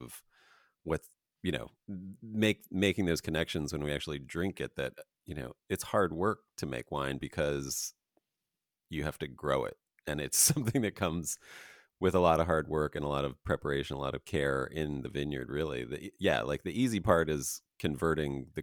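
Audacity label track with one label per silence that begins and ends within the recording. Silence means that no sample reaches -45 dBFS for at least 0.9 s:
7.900000	8.910000	silence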